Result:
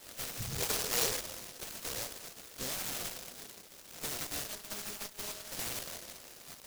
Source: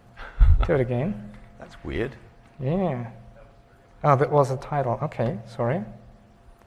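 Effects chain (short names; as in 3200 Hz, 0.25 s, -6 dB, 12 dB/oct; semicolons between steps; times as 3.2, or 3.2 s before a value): spectral gate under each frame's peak -10 dB weak; bell 710 Hz +15 dB 1.7 oct; compressor 12:1, threshold -29 dBFS, peak gain reduction 17.5 dB; 4.47–5.52 robotiser 208 Hz; tube stage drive 34 dB, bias 0.5; 0.51–1.19 small resonant body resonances 460/810 Hz, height 13 dB -> 16 dB, ringing for 40 ms; noise-modulated delay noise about 5300 Hz, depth 0.41 ms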